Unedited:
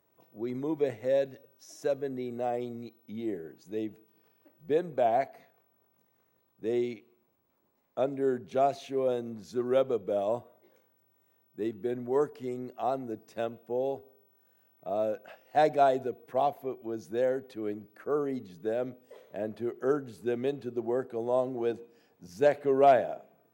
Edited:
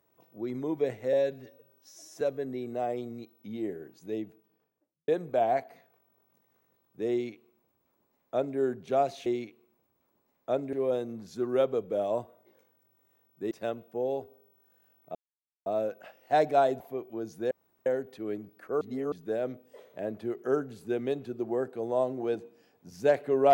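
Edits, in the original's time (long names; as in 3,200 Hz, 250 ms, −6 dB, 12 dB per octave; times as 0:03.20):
0:01.13–0:01.85: time-stretch 1.5×
0:03.73–0:04.72: fade out and dull
0:06.75–0:08.22: duplicate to 0:08.90
0:11.68–0:13.26: remove
0:14.90: splice in silence 0.51 s
0:16.04–0:16.52: remove
0:17.23: splice in room tone 0.35 s
0:18.18–0:18.49: reverse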